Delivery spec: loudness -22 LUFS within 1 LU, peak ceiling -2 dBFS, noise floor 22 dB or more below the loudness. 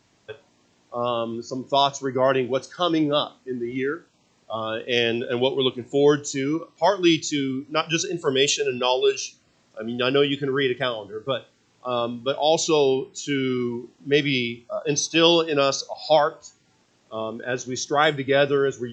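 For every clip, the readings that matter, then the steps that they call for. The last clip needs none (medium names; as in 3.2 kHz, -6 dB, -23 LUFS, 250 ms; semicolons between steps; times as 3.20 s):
loudness -23.0 LUFS; peak level -4.0 dBFS; loudness target -22.0 LUFS
-> trim +1 dB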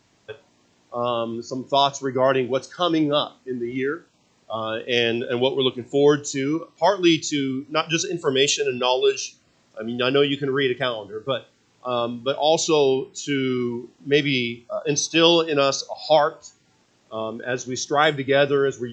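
loudness -22.0 LUFS; peak level -3.0 dBFS; noise floor -62 dBFS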